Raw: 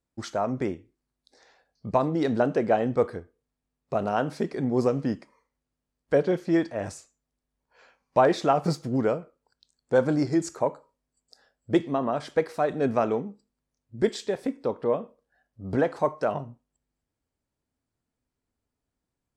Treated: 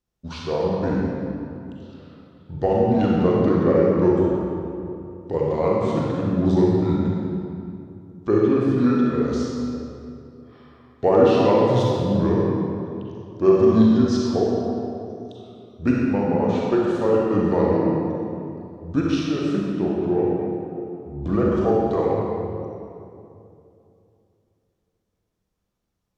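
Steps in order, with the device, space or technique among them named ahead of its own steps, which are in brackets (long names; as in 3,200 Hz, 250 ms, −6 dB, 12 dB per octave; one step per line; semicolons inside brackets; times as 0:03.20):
slowed and reverbed (speed change −26%; convolution reverb RT60 2.7 s, pre-delay 36 ms, DRR −4 dB)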